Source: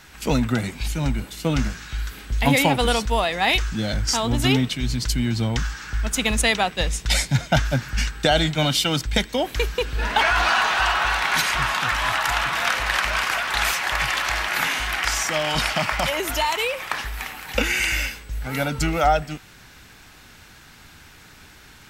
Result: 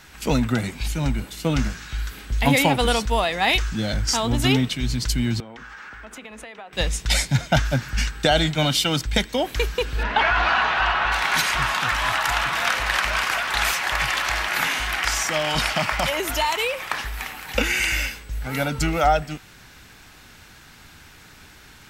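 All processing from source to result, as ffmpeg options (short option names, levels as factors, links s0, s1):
-filter_complex "[0:a]asettb=1/sr,asplit=3[s0][s1][s2];[s0]atrim=end=5.404[s3];[s1]atrim=start=5.4:end=6.73,asetpts=PTS-STARTPTS,afade=t=in:d=0.004:c=qsin,afade=t=out:st=1.326:d=0.004:c=qsin,acrossover=split=230 2600:gain=0.1 1 0.158[s4][s5][s6];[s4][s5][s6]amix=inputs=3:normalize=0,bandreject=f=60:t=h:w=6,bandreject=f=120:t=h:w=6,bandreject=f=180:t=h:w=6,bandreject=f=240:t=h:w=6,bandreject=f=300:t=h:w=6,bandreject=f=360:t=h:w=6,bandreject=f=420:t=h:w=6,bandreject=f=480:t=h:w=6,acompressor=threshold=0.0178:ratio=12:attack=3.2:release=140:knee=1:detection=peak[s7];[s2]atrim=start=6.726[s8];[s3][s7]acrossfade=d=0.004:c1=hsin:c2=qsin[s9];[s9][s8]acrossfade=d=0.004:c1=qsin:c2=hsin,asettb=1/sr,asplit=3[s10][s11][s12];[s10]atrim=end=10.034[s13];[s11]atrim=start=10.03:end=11.12,asetpts=PTS-STARTPTS,afade=t=in:d=0.004:c=qsin,afade=t=out:st=1.086:d=0.004:c=qsin,lowpass=3300,aeval=exprs='val(0)+0.00794*(sin(2*PI*60*n/s)+sin(2*PI*2*60*n/s)/2+sin(2*PI*3*60*n/s)/3+sin(2*PI*4*60*n/s)/4+sin(2*PI*5*60*n/s)/5)':c=same[s14];[s12]atrim=start=11.116[s15];[s13][s14]acrossfade=d=0.004:c1=hsin:c2=qsin[s16];[s16][s15]acrossfade=d=0.004:c1=qsin:c2=hsin"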